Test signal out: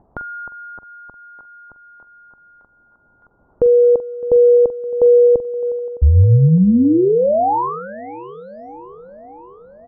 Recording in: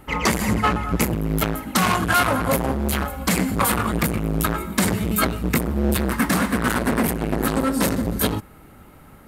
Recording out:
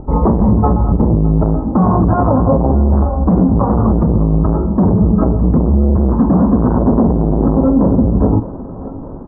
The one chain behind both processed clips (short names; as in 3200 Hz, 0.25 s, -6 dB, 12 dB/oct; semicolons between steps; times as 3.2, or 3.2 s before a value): steep low-pass 1000 Hz 36 dB/oct; tilt -2 dB/oct; upward compressor, threshold -38 dBFS; doubler 44 ms -13.5 dB; thinning echo 0.611 s, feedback 71%, high-pass 220 Hz, level -17.5 dB; maximiser +11 dB; gain -2 dB